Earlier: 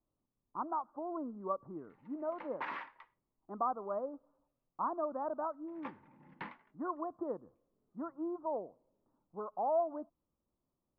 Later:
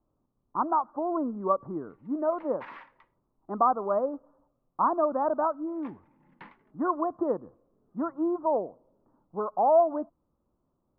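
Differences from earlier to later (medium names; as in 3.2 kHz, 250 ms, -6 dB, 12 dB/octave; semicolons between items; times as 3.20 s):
speech +11.0 dB; background -3.5 dB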